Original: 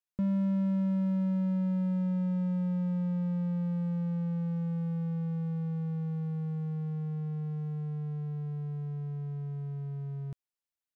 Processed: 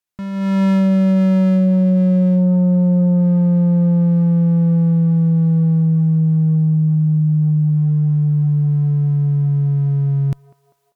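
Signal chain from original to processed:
feedback echo with a band-pass in the loop 197 ms, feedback 65%, band-pass 800 Hz, level −21 dB
harmonic generator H 2 −24 dB, 5 −13 dB, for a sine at −22.5 dBFS
automatic gain control gain up to 15.5 dB

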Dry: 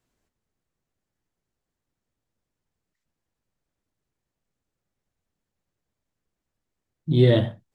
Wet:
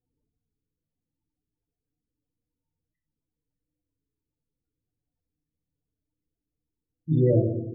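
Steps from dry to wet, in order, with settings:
pitch vibrato 9.9 Hz 25 cents
feedback delay network reverb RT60 1.1 s, low-frequency decay 1.3×, high-frequency decay 0.55×, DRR 0.5 dB
spectral peaks only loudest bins 16
level −5 dB

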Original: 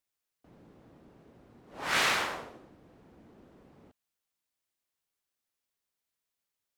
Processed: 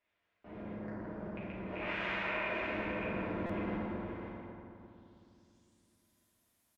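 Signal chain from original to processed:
loose part that buzzes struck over −53 dBFS, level −22 dBFS
0:00.75–0:01.35: elliptic band-stop filter 1,800–4,600 Hz
0:02.59–0:03.75: leveller curve on the samples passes 3
brickwall limiter −42 dBFS, peak gain reduction 26.5 dB
hollow resonant body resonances 410/620/950/3,500 Hz, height 6 dB, ringing for 25 ms
low-pass filter sweep 2,300 Hz → 12,000 Hz, 0:04.66–0:06.04
single-tap delay 546 ms −6.5 dB
convolution reverb RT60 2.7 s, pre-delay 5 ms, DRR −9 dB
buffer that repeats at 0:03.46, samples 256, times 5

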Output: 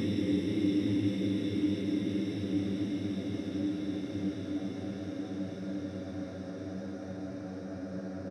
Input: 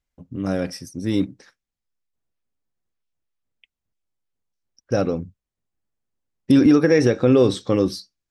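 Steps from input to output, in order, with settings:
slap from a distant wall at 200 metres, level −11 dB
extreme stretch with random phases 29×, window 1.00 s, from 0:01.34
level −3 dB

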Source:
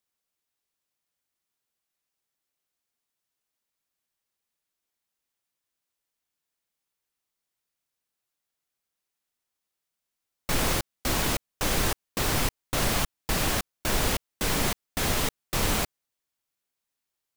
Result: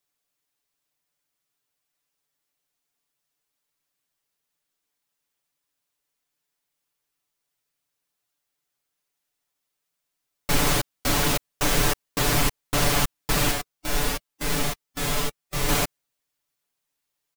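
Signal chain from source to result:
comb filter 6.9 ms, depth 87%
0:13.51–0:15.69: harmonic and percussive parts rebalanced percussive −16 dB
level +1.5 dB

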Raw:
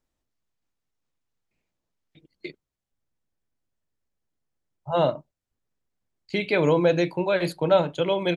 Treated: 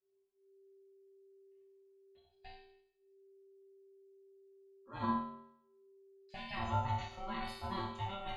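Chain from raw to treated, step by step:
resonators tuned to a chord B3 major, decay 0.71 s
four-comb reverb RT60 0.54 s, DRR 6 dB
ring modulation 390 Hz
level +10 dB

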